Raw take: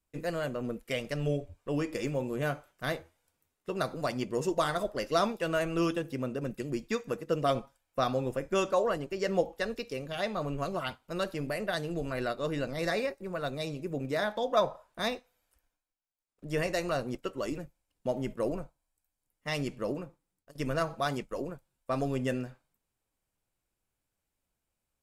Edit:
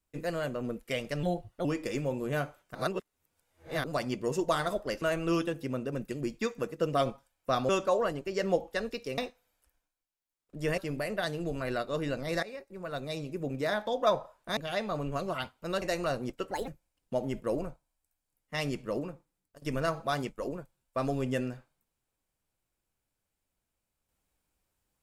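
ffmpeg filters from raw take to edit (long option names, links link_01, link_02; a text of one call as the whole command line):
ffmpeg -i in.wav -filter_complex "[0:a]asplit=14[link_01][link_02][link_03][link_04][link_05][link_06][link_07][link_08][link_09][link_10][link_11][link_12][link_13][link_14];[link_01]atrim=end=1.234[link_15];[link_02]atrim=start=1.23:end=1.74,asetpts=PTS-STARTPTS,asetrate=53802,aresample=44100,atrim=end_sample=18435,asetpts=PTS-STARTPTS[link_16];[link_03]atrim=start=1.736:end=2.842[link_17];[link_04]atrim=start=2.838:end=3.932,asetpts=PTS-STARTPTS,areverse[link_18];[link_05]atrim=start=3.928:end=5.112[link_19];[link_06]atrim=start=5.508:end=8.182[link_20];[link_07]atrim=start=8.538:end=10.032[link_21];[link_08]atrim=start=15.068:end=16.672[link_22];[link_09]atrim=start=11.278:end=12.93,asetpts=PTS-STARTPTS,afade=type=out:start_time=1.648:duration=0.004:curve=hsin:silence=0.141254[link_23];[link_10]atrim=start=12.93:end=15.072,asetpts=PTS-STARTPTS,afade=type=in:duration=1.04:curve=qsin:silence=0.141254[link_24];[link_11]atrim=start=10.028:end=11.282[link_25];[link_12]atrim=start=16.668:end=17.364[link_26];[link_13]atrim=start=17.36:end=17.61,asetpts=PTS-STARTPTS,asetrate=65268,aresample=44100,atrim=end_sample=7449,asetpts=PTS-STARTPTS[link_27];[link_14]atrim=start=17.606[link_28];[link_15][link_16]acrossfade=duration=0.004:curve1=hsin:curve2=hsin[link_29];[link_29][link_17]acrossfade=duration=0.004:curve1=hsin:curve2=hsin[link_30];[link_30][link_18]acrossfade=duration=0.004:curve1=hsin:curve2=hsin[link_31];[link_31][link_19]acrossfade=duration=0.004:curve1=hsin:curve2=hsin[link_32];[link_32][link_20]acrossfade=duration=0.004:curve1=hsin:curve2=hsin[link_33];[link_33][link_21]acrossfade=duration=0.004:curve1=hsin:curve2=hsin[link_34];[link_34][link_22]acrossfade=duration=0.004:curve1=hsin:curve2=hsin[link_35];[link_23][link_24]concat=n=2:v=0:a=1[link_36];[link_35][link_36]acrossfade=duration=0.004:curve1=hsin:curve2=hsin[link_37];[link_37][link_25]acrossfade=duration=0.004:curve1=hsin:curve2=hsin[link_38];[link_38][link_26]acrossfade=duration=0.004:curve1=hsin:curve2=hsin[link_39];[link_39][link_27]acrossfade=duration=0.004:curve1=hsin:curve2=hsin[link_40];[link_40][link_28]acrossfade=duration=0.004:curve1=hsin:curve2=hsin" out.wav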